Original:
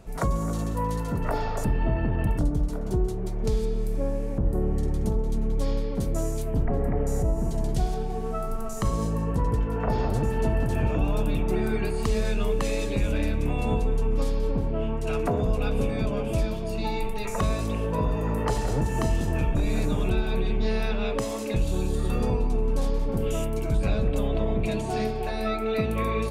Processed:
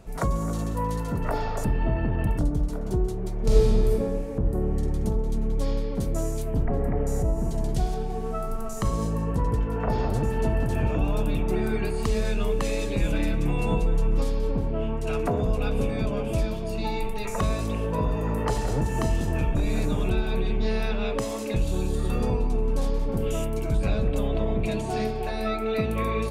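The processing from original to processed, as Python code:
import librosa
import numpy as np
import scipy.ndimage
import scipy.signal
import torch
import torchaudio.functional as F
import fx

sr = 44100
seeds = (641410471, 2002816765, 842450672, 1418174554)

y = fx.reverb_throw(x, sr, start_s=3.44, length_s=0.47, rt60_s=1.6, drr_db=-6.0)
y = fx.comb(y, sr, ms=6.0, depth=0.65, at=(12.99, 14.21))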